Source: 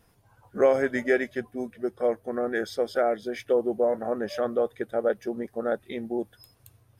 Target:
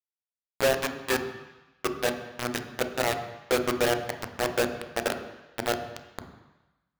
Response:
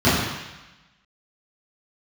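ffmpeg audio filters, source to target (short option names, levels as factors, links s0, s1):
-filter_complex "[0:a]bandreject=f=60:t=h:w=6,bandreject=f=120:t=h:w=6,bandreject=f=180:t=h:w=6,bandreject=f=240:t=h:w=6,alimiter=limit=0.168:level=0:latency=1:release=466,flanger=delay=15.5:depth=3.1:speed=0.31,acrusher=bits=3:mix=0:aa=0.000001,asplit=2[s0][s1];[1:a]atrim=start_sample=2205,adelay=9[s2];[s1][s2]afir=irnorm=-1:irlink=0,volume=0.0335[s3];[s0][s3]amix=inputs=2:normalize=0"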